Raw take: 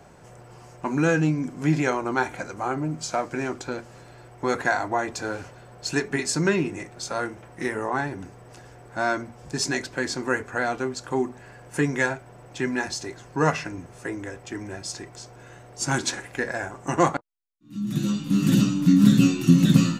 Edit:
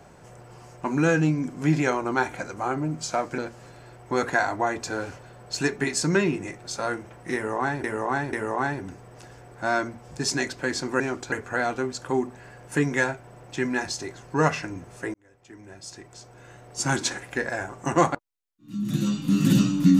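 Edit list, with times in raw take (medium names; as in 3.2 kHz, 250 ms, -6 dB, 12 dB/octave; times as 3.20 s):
3.38–3.70 s: move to 10.34 s
7.67–8.16 s: loop, 3 plays
14.16–15.84 s: fade in linear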